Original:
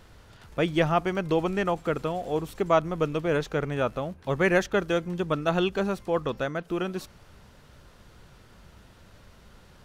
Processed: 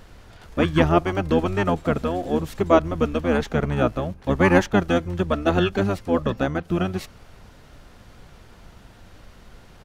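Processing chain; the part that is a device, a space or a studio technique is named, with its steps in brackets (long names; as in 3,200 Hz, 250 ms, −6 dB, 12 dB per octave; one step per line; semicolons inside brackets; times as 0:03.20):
octave pedal (pitch-shifted copies added −12 semitones −1 dB)
level +3 dB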